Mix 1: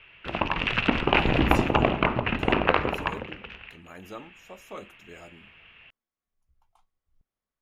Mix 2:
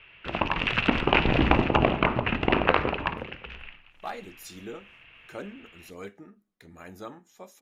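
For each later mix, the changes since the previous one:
speech: entry +2.90 s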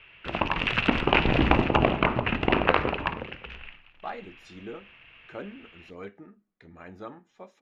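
speech: add low-pass 2.9 kHz 12 dB/octave

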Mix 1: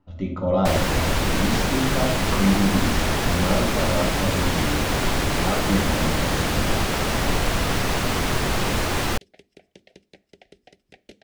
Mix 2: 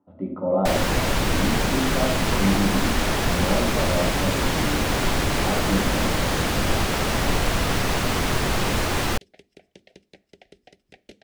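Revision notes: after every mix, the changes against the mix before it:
speech: add Butterworth band-pass 450 Hz, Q 0.52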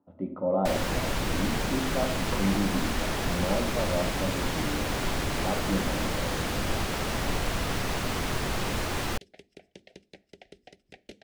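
speech: send -7.5 dB; first sound -7.0 dB

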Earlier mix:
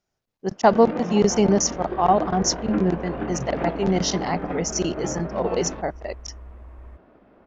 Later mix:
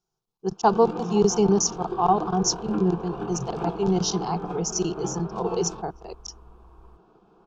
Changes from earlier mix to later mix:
first sound: remove distance through air 160 m; master: add static phaser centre 390 Hz, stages 8

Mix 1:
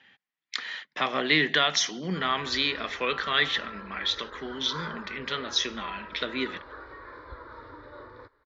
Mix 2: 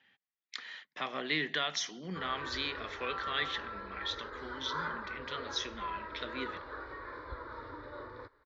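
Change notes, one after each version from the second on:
speech -10.0 dB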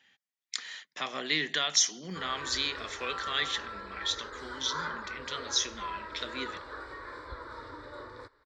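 master: remove distance through air 230 m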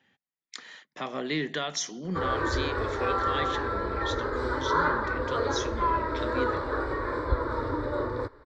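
background +10.5 dB; master: add tilt shelf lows +8.5 dB, about 1.2 kHz

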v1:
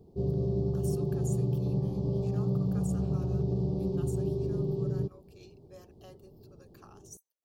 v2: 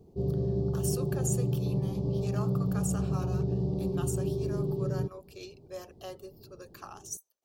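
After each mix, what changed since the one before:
speech +11.0 dB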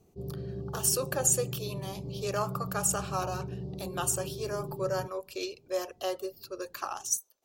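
speech +10.0 dB; background -8.5 dB

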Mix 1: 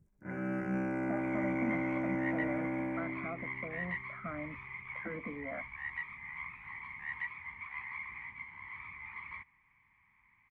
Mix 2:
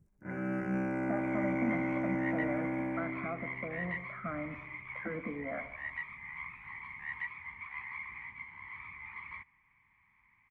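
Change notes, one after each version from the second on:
reverb: on, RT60 0.90 s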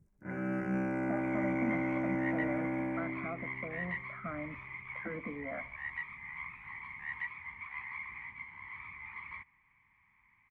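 speech: send -11.5 dB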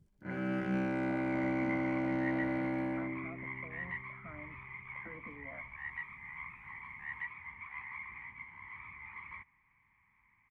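speech -10.0 dB; first sound: remove Butterworth band-stop 3.7 kHz, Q 1.1; second sound: add distance through air 220 m

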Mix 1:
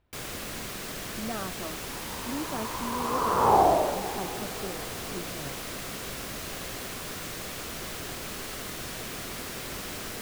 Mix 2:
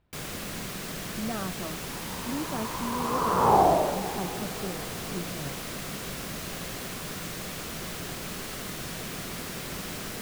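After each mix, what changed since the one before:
master: add peaking EQ 170 Hz +7 dB 0.66 oct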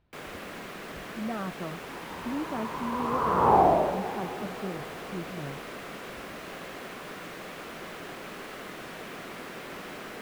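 first sound: add three-band isolator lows -15 dB, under 240 Hz, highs -14 dB, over 2.9 kHz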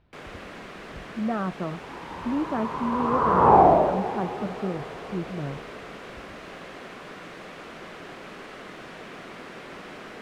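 speech +6.5 dB; second sound +5.0 dB; master: add distance through air 57 m

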